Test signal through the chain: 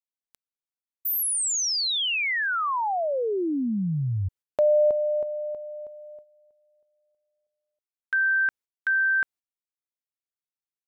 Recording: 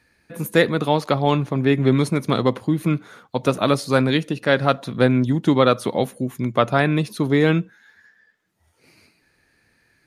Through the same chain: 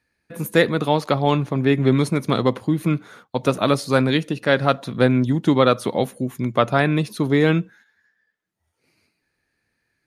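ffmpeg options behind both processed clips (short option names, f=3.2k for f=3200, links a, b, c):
-af "agate=range=-11dB:threshold=-46dB:ratio=16:detection=peak"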